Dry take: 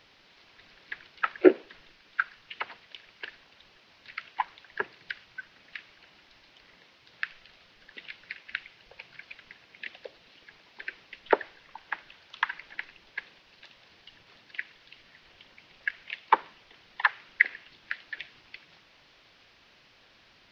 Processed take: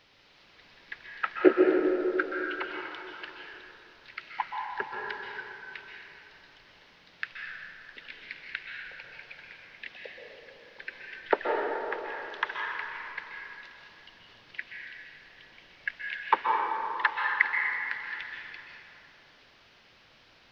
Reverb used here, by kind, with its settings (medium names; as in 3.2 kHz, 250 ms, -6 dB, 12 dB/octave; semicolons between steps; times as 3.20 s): plate-style reverb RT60 3 s, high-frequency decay 0.45×, pre-delay 115 ms, DRR -1 dB; trim -2.5 dB